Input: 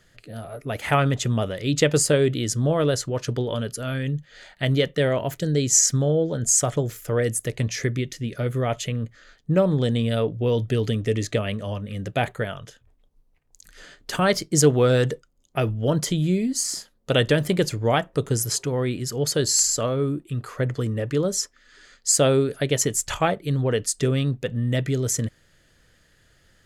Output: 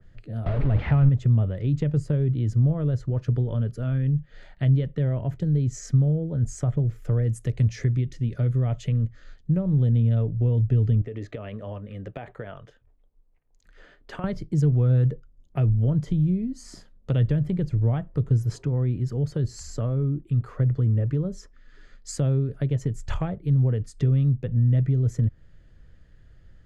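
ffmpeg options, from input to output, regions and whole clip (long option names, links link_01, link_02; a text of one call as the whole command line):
ffmpeg -i in.wav -filter_complex "[0:a]asettb=1/sr,asplit=3[link_01][link_02][link_03];[link_01]atrim=end=0.464[link_04];[link_02]atrim=start=0.46:end=1.09,asetpts=PTS-STARTPTS,afade=type=in:duration=0.004:curve=qsin,afade=type=out:start_time=0.626:duration=0.004:curve=qsin,aeval=exprs='val(0)+0.5*0.1*sgn(val(0))':channel_layout=same,lowpass=frequency=4100:width=0.5412,lowpass=frequency=4100:width=1.3066[link_05];[link_03]atrim=start=1.086[link_06];[link_04][link_05]acrossfade=duration=0.004:curve1=hsin:curve2=qsin[link_07];[link_07][link_06]acrossfade=duration=0.004:curve1=qsin:curve2=hsin,asettb=1/sr,asplit=3[link_08][link_09][link_10];[link_08]atrim=end=7.294[link_11];[link_09]atrim=start=7.29:end=9.57,asetpts=PTS-STARTPTS,afade=type=in:duration=0.004:curve=qsin,afade=type=out:start_time=2.276:duration=0.004:curve=qsin,lowpass=7400,aemphasis=mode=production:type=75fm,asoftclip=type=hard:threshold=-7.5dB[link_12];[link_10]atrim=start=9.566[link_13];[link_11][link_12]acrossfade=duration=0.004:curve1=hsin:curve2=qsin[link_14];[link_14][link_13]acrossfade=duration=0.004:curve1=qsin:curve2=hsin,asettb=1/sr,asplit=3[link_15][link_16][link_17];[link_15]atrim=end=11.014[link_18];[link_16]atrim=start=11.01:end=14.24,asetpts=PTS-STARTPTS,afade=type=in:duration=0.004:curve=qsin,afade=type=out:start_time=3.226:duration=0.004:curve=qsin,bass=frequency=250:gain=-14,treble=frequency=4000:gain=-7,acompressor=threshold=-28dB:ratio=5:attack=3.2:release=140:knee=1:detection=peak[link_19];[link_17]atrim=start=14.236[link_20];[link_18][link_19]acrossfade=duration=0.004:curve1=hsin:curve2=qsin[link_21];[link_21][link_20]acrossfade=duration=0.004:curve1=qsin:curve2=hsin,aemphasis=mode=reproduction:type=riaa,acrossover=split=160[link_22][link_23];[link_23]acompressor=threshold=-26dB:ratio=4[link_24];[link_22][link_24]amix=inputs=2:normalize=0,adynamicequalizer=threshold=0.00562:dfrequency=2300:dqfactor=0.7:tfrequency=2300:tqfactor=0.7:attack=5:release=100:ratio=0.375:range=2.5:mode=cutabove:tftype=highshelf,volume=-5dB" out.wav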